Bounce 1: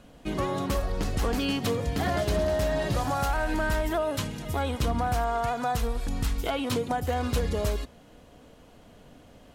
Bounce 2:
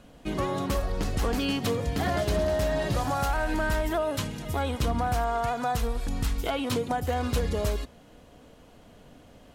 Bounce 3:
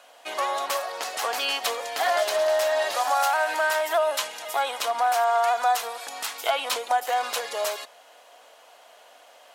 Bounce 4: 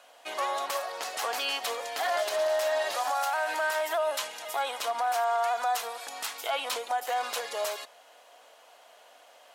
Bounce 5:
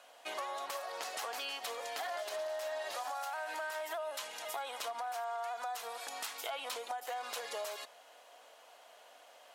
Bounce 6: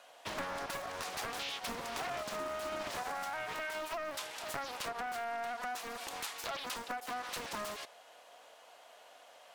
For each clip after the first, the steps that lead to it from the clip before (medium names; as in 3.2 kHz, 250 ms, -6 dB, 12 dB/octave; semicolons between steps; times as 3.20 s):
no audible change
Chebyshev high-pass 670 Hz, order 3; trim +7.5 dB
peak limiter -16.5 dBFS, peak gain reduction 5.5 dB; trim -3.5 dB
compression, threshold -34 dBFS, peak gain reduction 9.5 dB; trim -3 dB
loudspeaker Doppler distortion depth 0.92 ms; trim +1 dB